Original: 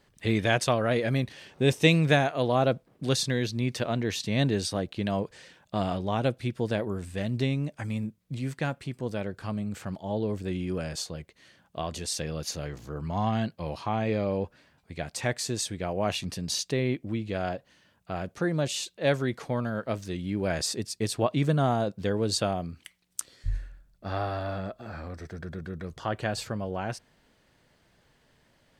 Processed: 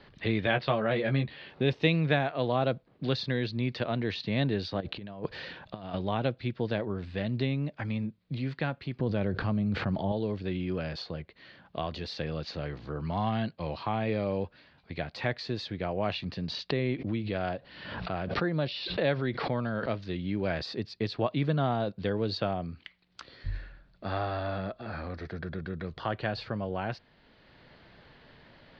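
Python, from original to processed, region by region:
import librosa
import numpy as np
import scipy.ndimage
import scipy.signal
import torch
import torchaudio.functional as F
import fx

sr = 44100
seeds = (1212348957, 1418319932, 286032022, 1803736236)

y = fx.chain(x, sr, fx.lowpass(hz=4200.0, slope=24),
    fx.doubler(ms=14.0, db=-5), at=(0.45, 1.5))
y = fx.chain(y, sr, fx.steep_lowpass(hz=8800.0, slope=36),
    fx.notch(hz=2100.0, q=25.0),
    fx.over_compress(threshold_db=-36.0, ratio=-0.5), at=(4.8, 5.94))
y = fx.chain(y, sr, fx.lowpass(hz=8500.0, slope=12),
    fx.tilt_eq(slope=-2.0),
    fx.env_flatten(amount_pct=70), at=(8.99, 10.12))
y = fx.chain(y, sr, fx.brickwall_lowpass(high_hz=5800.0),
    fx.pre_swell(db_per_s=53.0), at=(16.7, 20.0))
y = scipy.signal.sosfilt(scipy.signal.ellip(4, 1.0, 70, 4400.0, 'lowpass', fs=sr, output='sos'), y)
y = fx.band_squash(y, sr, depth_pct=40)
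y = y * librosa.db_to_amplitude(-1.5)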